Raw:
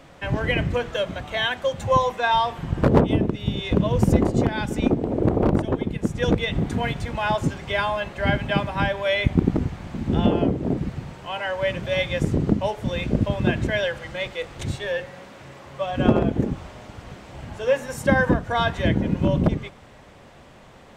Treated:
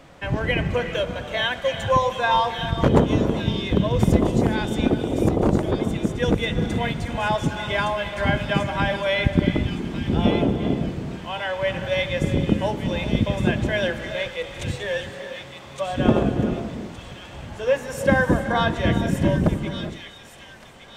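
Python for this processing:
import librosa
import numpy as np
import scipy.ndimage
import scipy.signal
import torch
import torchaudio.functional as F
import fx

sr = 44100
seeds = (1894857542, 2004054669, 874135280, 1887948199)

y = fx.echo_wet_highpass(x, sr, ms=1165, feedback_pct=32, hz=3000.0, wet_db=-4.0)
y = fx.rev_gated(y, sr, seeds[0], gate_ms=440, shape='rising', drr_db=8.5)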